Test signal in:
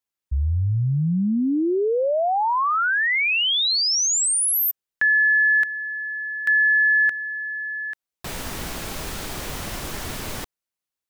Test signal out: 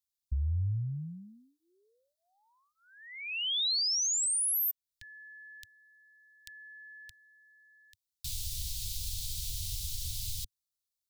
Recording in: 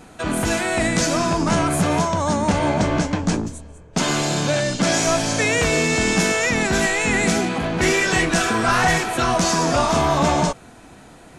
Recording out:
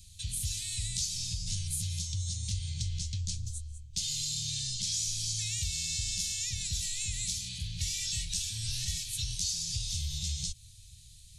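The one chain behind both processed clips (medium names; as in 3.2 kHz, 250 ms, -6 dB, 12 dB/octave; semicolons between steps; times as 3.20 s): elliptic band-stop 100–3800 Hz, stop band 50 dB; compression 2.5:1, threshold -33 dBFS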